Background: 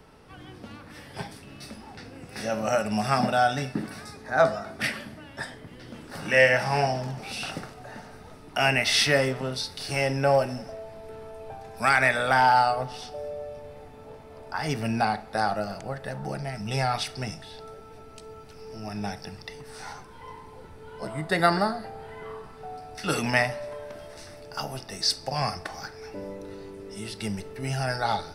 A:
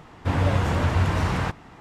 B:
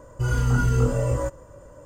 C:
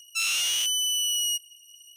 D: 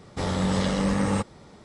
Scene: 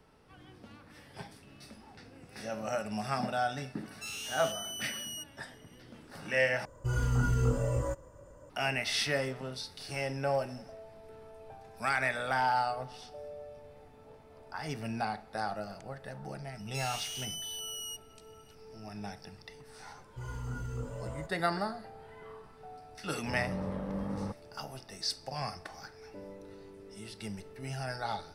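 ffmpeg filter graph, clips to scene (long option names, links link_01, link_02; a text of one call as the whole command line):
ffmpeg -i bed.wav -i cue0.wav -i cue1.wav -i cue2.wav -i cue3.wav -filter_complex "[3:a]asplit=2[link_01][link_02];[2:a]asplit=2[link_03][link_04];[0:a]volume=-9.5dB[link_05];[4:a]lowpass=1100[link_06];[link_05]asplit=2[link_07][link_08];[link_07]atrim=end=6.654[link_09];[link_03]atrim=end=1.85,asetpts=PTS-STARTPTS,volume=-7.5dB[link_10];[link_08]atrim=start=8.496[link_11];[link_01]atrim=end=1.96,asetpts=PTS-STARTPTS,volume=-15dB,afade=type=in:duration=0.004:curve=hsin,afade=type=out:start_time=1.956:duration=0.004:curve=hsin,adelay=3860[link_12];[link_02]atrim=end=1.96,asetpts=PTS-STARTPTS,volume=-14.5dB,afade=type=in:duration=0.004:curve=hsin,afade=type=out:start_time=1.956:duration=0.004:curve=hsin,adelay=16590[link_13];[link_04]atrim=end=1.85,asetpts=PTS-STARTPTS,volume=-18dB,afade=type=in:duration=0.004:curve=hsin,afade=type=out:start_time=1.846:duration=0.004:curve=hsin,adelay=19970[link_14];[link_06]atrim=end=1.64,asetpts=PTS-STARTPTS,volume=-12dB,afade=type=in:duration=0.004:curve=hsin,afade=type=out:start_time=1.636:duration=0.004:curve=hsin,adelay=23100[link_15];[link_09][link_10]acrossfade=duration=0.004:curve1=hsin:curve2=hsin[link_16];[link_16][link_11]acrossfade=duration=0.004:curve1=hsin:curve2=hsin[link_17];[link_17][link_12][link_13][link_14][link_15]amix=inputs=5:normalize=0" out.wav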